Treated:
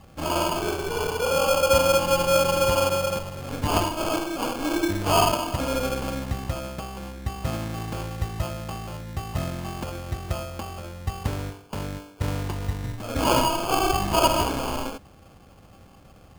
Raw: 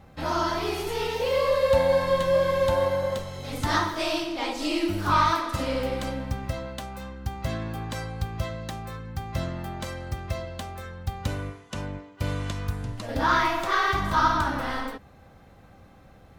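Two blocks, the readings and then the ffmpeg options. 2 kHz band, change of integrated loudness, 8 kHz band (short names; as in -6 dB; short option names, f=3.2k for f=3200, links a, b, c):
-1.5 dB, +1.5 dB, +10.0 dB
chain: -af "acrusher=samples=23:mix=1:aa=0.000001,volume=1.5dB"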